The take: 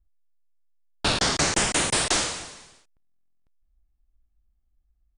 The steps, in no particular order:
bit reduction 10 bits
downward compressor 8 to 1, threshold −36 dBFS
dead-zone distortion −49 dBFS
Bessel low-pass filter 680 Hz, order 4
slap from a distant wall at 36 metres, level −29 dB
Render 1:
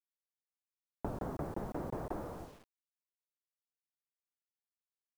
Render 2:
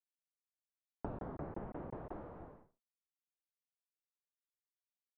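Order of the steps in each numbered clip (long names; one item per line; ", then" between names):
slap from a distant wall, then dead-zone distortion, then Bessel low-pass filter, then downward compressor, then bit reduction
slap from a distant wall, then bit reduction, then dead-zone distortion, then downward compressor, then Bessel low-pass filter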